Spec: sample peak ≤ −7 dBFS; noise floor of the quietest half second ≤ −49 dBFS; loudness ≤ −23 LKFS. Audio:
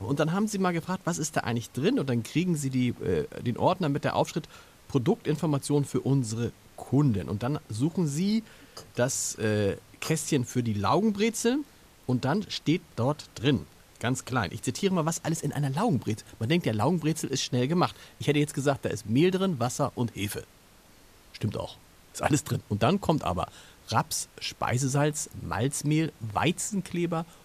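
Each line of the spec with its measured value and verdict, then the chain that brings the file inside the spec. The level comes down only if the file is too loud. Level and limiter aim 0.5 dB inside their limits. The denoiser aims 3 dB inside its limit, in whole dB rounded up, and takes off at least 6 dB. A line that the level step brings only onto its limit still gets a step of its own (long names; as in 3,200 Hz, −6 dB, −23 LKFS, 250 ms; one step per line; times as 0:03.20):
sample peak −10.0 dBFS: in spec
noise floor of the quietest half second −56 dBFS: in spec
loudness −28.5 LKFS: in spec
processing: no processing needed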